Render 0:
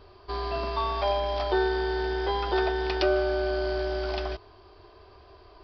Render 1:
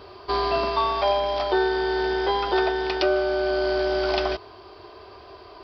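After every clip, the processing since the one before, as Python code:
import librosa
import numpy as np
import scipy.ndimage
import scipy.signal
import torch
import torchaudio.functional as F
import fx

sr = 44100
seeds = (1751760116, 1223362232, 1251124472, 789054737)

y = fx.rider(x, sr, range_db=5, speed_s=0.5)
y = fx.highpass(y, sr, hz=190.0, slope=6)
y = fx.notch(y, sr, hz=1700.0, q=28.0)
y = y * 10.0 ** (5.5 / 20.0)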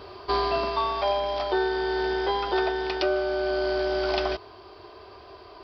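y = fx.rider(x, sr, range_db=10, speed_s=0.5)
y = y * 10.0 ** (-2.5 / 20.0)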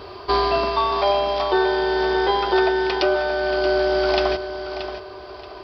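y = fx.echo_feedback(x, sr, ms=628, feedback_pct=29, wet_db=-10.0)
y = y * 10.0 ** (5.5 / 20.0)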